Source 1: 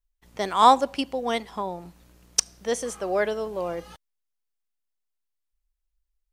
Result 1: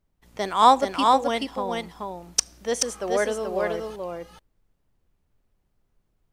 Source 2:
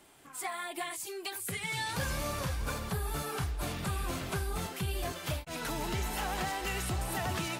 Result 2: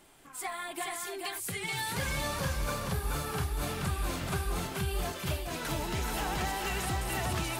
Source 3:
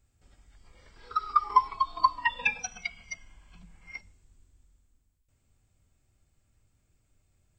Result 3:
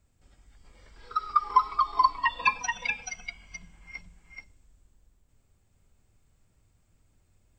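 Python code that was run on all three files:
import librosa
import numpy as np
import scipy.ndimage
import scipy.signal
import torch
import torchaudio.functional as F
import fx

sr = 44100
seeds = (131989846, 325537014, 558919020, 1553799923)

y = fx.dmg_noise_colour(x, sr, seeds[0], colour='brown', level_db=-70.0)
y = y + 10.0 ** (-3.5 / 20.0) * np.pad(y, (int(430 * sr / 1000.0), 0))[:len(y)]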